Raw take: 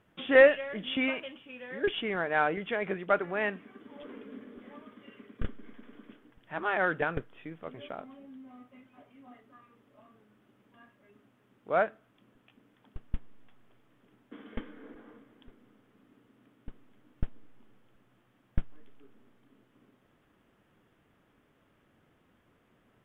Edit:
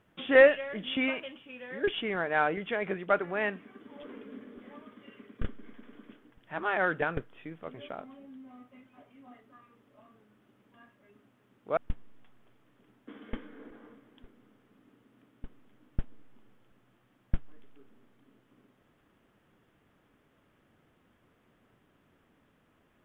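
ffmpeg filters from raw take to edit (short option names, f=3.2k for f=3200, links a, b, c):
-filter_complex "[0:a]asplit=2[a][b];[a]atrim=end=11.772[c];[b]atrim=start=13.008[d];[c][d]acrossfade=d=0.004:c1=hsin:c2=hsin"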